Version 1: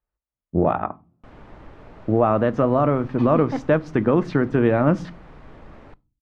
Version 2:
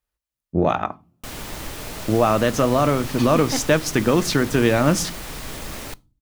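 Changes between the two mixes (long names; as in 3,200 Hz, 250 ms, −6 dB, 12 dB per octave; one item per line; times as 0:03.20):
background +9.0 dB
master: remove low-pass filter 1,400 Hz 12 dB per octave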